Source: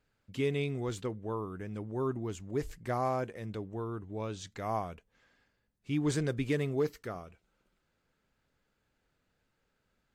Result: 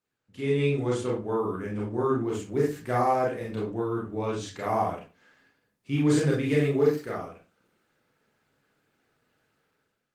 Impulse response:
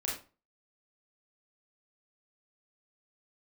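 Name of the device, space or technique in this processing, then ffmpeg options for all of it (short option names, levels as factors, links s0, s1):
far-field microphone of a smart speaker: -filter_complex "[0:a]asplit=3[s0][s1][s2];[s0]afade=t=out:st=1.67:d=0.02[s3];[s1]lowpass=9900,afade=t=in:st=1.67:d=0.02,afade=t=out:st=2.25:d=0.02[s4];[s2]afade=t=in:st=2.25:d=0.02[s5];[s3][s4][s5]amix=inputs=3:normalize=0[s6];[1:a]atrim=start_sample=2205[s7];[s6][s7]afir=irnorm=-1:irlink=0,highpass=f=110:w=0.5412,highpass=f=110:w=1.3066,dynaudnorm=f=140:g=7:m=4.73,volume=0.398" -ar 48000 -c:a libopus -b:a 24k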